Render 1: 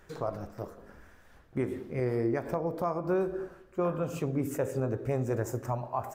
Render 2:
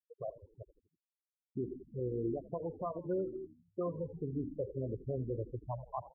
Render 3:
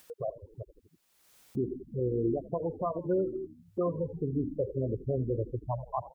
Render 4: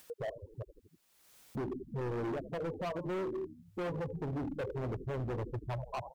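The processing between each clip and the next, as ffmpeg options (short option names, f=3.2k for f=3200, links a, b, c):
-filter_complex "[0:a]afftfilt=real='re*gte(hypot(re,im),0.1)':imag='im*gte(hypot(re,im),0.1)':win_size=1024:overlap=0.75,asplit=5[a][b][c][d][e];[b]adelay=81,afreqshift=-70,volume=-16.5dB[f];[c]adelay=162,afreqshift=-140,volume=-22.9dB[g];[d]adelay=243,afreqshift=-210,volume=-29.3dB[h];[e]adelay=324,afreqshift=-280,volume=-35.6dB[i];[a][f][g][h][i]amix=inputs=5:normalize=0,volume=-6.5dB"
-af "acompressor=mode=upward:threshold=-43dB:ratio=2.5,volume=6.5dB"
-af "asoftclip=type=hard:threshold=-34dB"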